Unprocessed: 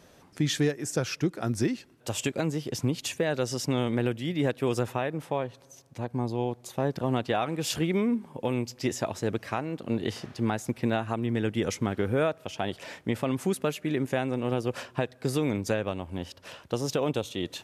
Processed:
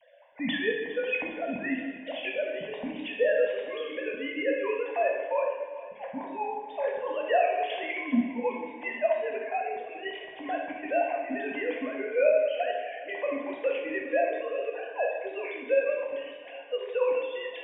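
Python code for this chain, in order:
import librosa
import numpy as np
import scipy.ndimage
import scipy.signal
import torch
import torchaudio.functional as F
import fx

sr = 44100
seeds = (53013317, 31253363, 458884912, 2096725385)

y = fx.sine_speech(x, sr)
y = fx.fixed_phaser(y, sr, hz=1300.0, stages=6)
y = fx.echo_feedback(y, sr, ms=406, feedback_pct=41, wet_db=-16)
y = fx.rev_plate(y, sr, seeds[0], rt60_s=1.3, hf_ratio=0.9, predelay_ms=0, drr_db=-1.0)
y = F.gain(torch.from_numpy(y), 2.5).numpy()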